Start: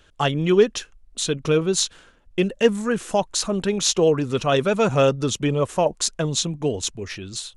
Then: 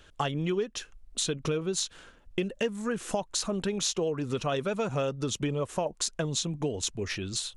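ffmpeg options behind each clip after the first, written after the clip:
ffmpeg -i in.wav -af "acompressor=threshold=-27dB:ratio=6" out.wav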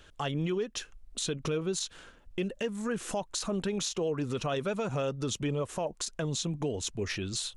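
ffmpeg -i in.wav -af "alimiter=limit=-23dB:level=0:latency=1:release=36" out.wav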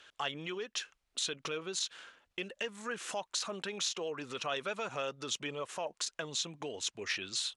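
ffmpeg -i in.wav -af "bandpass=frequency=2600:width_type=q:width=0.51:csg=0,volume=2dB" out.wav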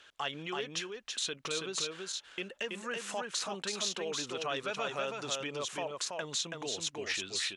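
ffmpeg -i in.wav -af "aecho=1:1:328:0.668" out.wav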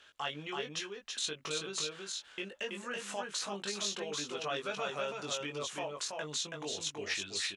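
ffmpeg -i in.wav -filter_complex "[0:a]asplit=2[link_01][link_02];[link_02]adelay=20,volume=-4dB[link_03];[link_01][link_03]amix=inputs=2:normalize=0,volume=-3dB" out.wav

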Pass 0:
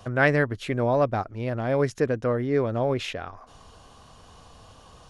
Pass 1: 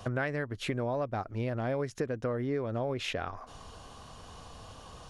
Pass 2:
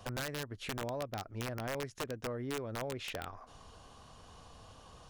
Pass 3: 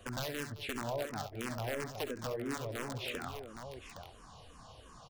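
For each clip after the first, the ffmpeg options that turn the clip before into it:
ffmpeg -i in.wav -af "acompressor=threshold=-30dB:ratio=12,volume=1.5dB" out.wav
ffmpeg -i in.wav -af "aeval=exprs='(mod(15.8*val(0)+1,2)-1)/15.8':channel_layout=same,volume=-6.5dB" out.wav
ffmpeg -i in.wav -filter_complex "[0:a]asplit=2[link_01][link_02];[link_02]aecho=0:1:54|65|68|87|216|814:0.133|0.141|0.335|0.119|0.2|0.376[link_03];[link_01][link_03]amix=inputs=2:normalize=0,asplit=2[link_04][link_05];[link_05]afreqshift=-2.9[link_06];[link_04][link_06]amix=inputs=2:normalize=1,volume=2.5dB" out.wav

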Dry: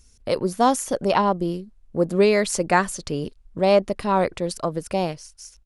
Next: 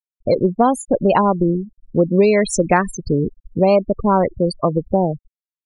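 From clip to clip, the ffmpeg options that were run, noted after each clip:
ffmpeg -i in.wav -af "lowshelf=frequency=380:gain=4,afftfilt=real='re*gte(hypot(re,im),0.0891)':imag='im*gte(hypot(re,im),0.0891)':win_size=1024:overlap=0.75,acompressor=threshold=-19dB:ratio=3,volume=7.5dB" out.wav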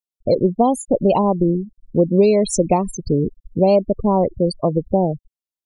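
ffmpeg -i in.wav -af "asuperstop=centerf=1600:order=4:qfactor=0.81" out.wav

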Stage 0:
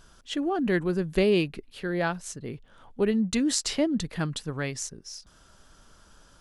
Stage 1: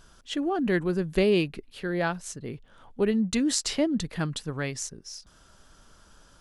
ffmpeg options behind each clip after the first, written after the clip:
ffmpeg -i in.wav -af anull out.wav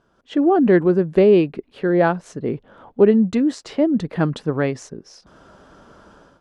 ffmpeg -i in.wav -af "dynaudnorm=framelen=130:gausssize=5:maxgain=16dB,bandpass=frequency=430:width_type=q:width=0.62:csg=0" out.wav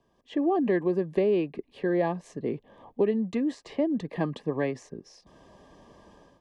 ffmpeg -i in.wav -filter_complex "[0:a]asuperstop=centerf=1400:order=20:qfactor=4.2,acrossover=split=150|400|2800[link_01][link_02][link_03][link_04];[link_01]acompressor=threshold=-43dB:ratio=4[link_05];[link_02]acompressor=threshold=-23dB:ratio=4[link_06];[link_03]acompressor=threshold=-20dB:ratio=4[link_07];[link_04]acompressor=threshold=-47dB:ratio=4[link_08];[link_05][link_06][link_07][link_08]amix=inputs=4:normalize=0,volume=-5.5dB" out.wav

